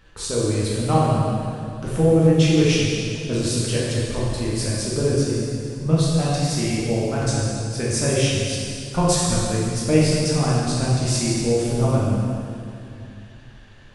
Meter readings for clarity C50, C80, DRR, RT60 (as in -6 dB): -2.5 dB, -0.5 dB, -7.0 dB, 2.5 s